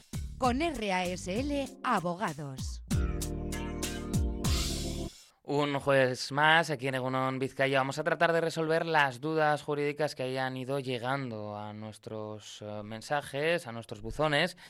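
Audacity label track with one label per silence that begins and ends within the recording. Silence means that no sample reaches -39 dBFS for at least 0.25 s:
5.080000	5.480000	silence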